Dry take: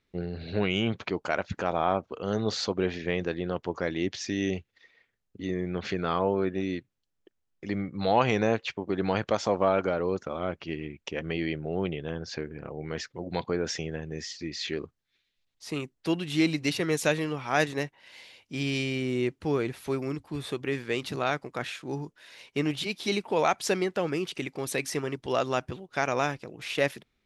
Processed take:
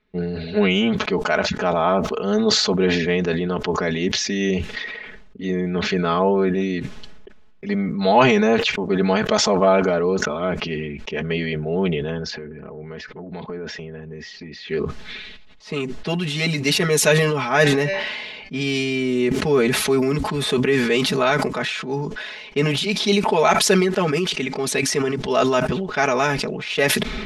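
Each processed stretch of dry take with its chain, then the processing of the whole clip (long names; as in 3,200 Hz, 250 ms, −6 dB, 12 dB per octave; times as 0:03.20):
0:12.30–0:14.71: low-pass filter 2,200 Hz 6 dB per octave + downward compressor 3 to 1, threshold −39 dBFS
0:17.48–0:18.61: bass and treble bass +2 dB, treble −4 dB + hum removal 194.5 Hz, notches 33
0:19.31–0:21.48: high-pass filter 49 Hz + envelope flattener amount 50%
whole clip: low-pass that shuts in the quiet parts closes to 3,000 Hz, open at −24 dBFS; comb filter 4.7 ms, depth 100%; level that may fall only so fast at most 32 dB per second; level +4.5 dB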